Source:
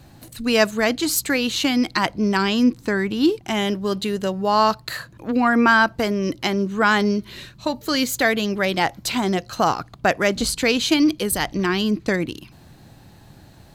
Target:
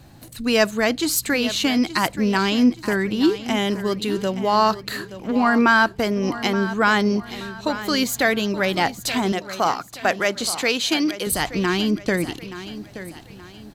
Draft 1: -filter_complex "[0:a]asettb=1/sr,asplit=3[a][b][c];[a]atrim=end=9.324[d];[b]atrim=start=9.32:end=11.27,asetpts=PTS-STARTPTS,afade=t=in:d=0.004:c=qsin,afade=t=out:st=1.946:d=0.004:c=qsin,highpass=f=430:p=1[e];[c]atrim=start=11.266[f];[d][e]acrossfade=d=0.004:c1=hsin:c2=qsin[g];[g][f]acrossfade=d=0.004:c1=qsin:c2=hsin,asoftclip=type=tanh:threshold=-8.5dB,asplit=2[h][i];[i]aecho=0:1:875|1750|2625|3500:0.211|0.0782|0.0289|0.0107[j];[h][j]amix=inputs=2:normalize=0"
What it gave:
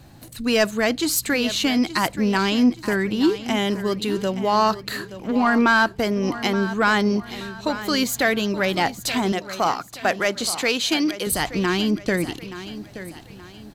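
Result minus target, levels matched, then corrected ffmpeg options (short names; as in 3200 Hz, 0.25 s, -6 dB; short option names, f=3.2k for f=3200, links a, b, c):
soft clip: distortion +11 dB
-filter_complex "[0:a]asettb=1/sr,asplit=3[a][b][c];[a]atrim=end=9.324[d];[b]atrim=start=9.32:end=11.27,asetpts=PTS-STARTPTS,afade=t=in:d=0.004:c=qsin,afade=t=out:st=1.946:d=0.004:c=qsin,highpass=f=430:p=1[e];[c]atrim=start=11.266[f];[d][e]acrossfade=d=0.004:c1=hsin:c2=qsin[g];[g][f]acrossfade=d=0.004:c1=qsin:c2=hsin,asoftclip=type=tanh:threshold=-2dB,asplit=2[h][i];[i]aecho=0:1:875|1750|2625|3500:0.211|0.0782|0.0289|0.0107[j];[h][j]amix=inputs=2:normalize=0"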